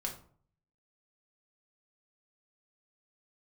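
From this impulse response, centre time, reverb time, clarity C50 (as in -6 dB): 18 ms, 0.50 s, 9.0 dB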